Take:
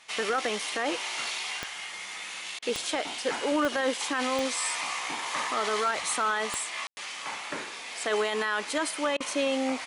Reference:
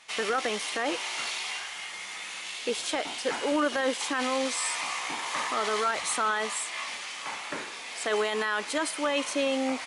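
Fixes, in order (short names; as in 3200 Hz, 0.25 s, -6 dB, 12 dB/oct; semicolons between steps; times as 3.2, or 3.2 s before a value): clip repair -17.5 dBFS; de-click; room tone fill 6.87–6.97; interpolate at 2.59/9.17, 32 ms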